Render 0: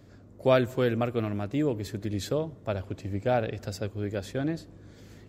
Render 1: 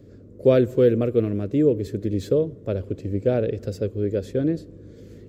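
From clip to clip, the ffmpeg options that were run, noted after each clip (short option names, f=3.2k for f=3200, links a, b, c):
-filter_complex "[0:a]lowshelf=f=610:t=q:w=3:g=8,acrossover=split=4700[a][b];[b]asoftclip=type=hard:threshold=-40dB[c];[a][c]amix=inputs=2:normalize=0,volume=-3dB"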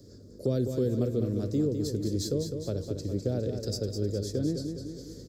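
-filter_complex "[0:a]highshelf=f=3.6k:t=q:w=3:g=11.5,acrossover=split=260[a][b];[b]acompressor=threshold=-28dB:ratio=4[c];[a][c]amix=inputs=2:normalize=0,aecho=1:1:205|410|615|820|1025|1230|1435:0.447|0.241|0.13|0.0703|0.038|0.0205|0.0111,volume=-4.5dB"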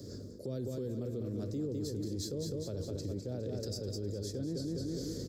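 -af "highpass=59,areverse,acompressor=threshold=-35dB:ratio=6,areverse,alimiter=level_in=11.5dB:limit=-24dB:level=0:latency=1:release=45,volume=-11.5dB,volume=6dB"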